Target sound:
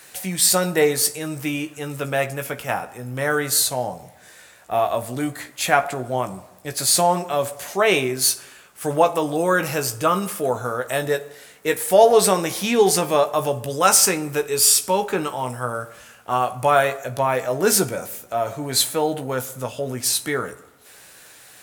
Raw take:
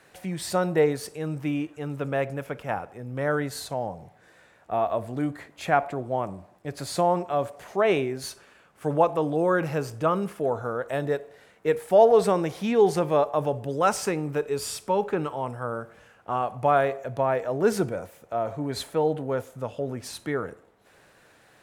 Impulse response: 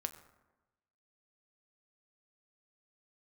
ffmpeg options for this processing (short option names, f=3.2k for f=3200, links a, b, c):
-filter_complex "[0:a]crystalizer=i=6.5:c=0,asplit=2[a][b];[1:a]atrim=start_sample=2205,adelay=16[c];[b][c]afir=irnorm=-1:irlink=0,volume=-6dB[d];[a][d]amix=inputs=2:normalize=0,volume=1.5dB"